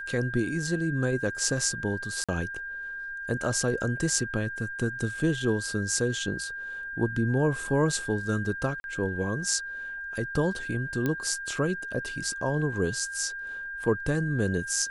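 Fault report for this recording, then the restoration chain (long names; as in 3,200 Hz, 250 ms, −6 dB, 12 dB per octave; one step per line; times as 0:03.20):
whistle 1,600 Hz −34 dBFS
0:02.24–0:02.29: drop-out 46 ms
0:08.80–0:08.84: drop-out 41 ms
0:11.06: click −15 dBFS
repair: click removal
notch filter 1,600 Hz, Q 30
repair the gap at 0:02.24, 46 ms
repair the gap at 0:08.80, 41 ms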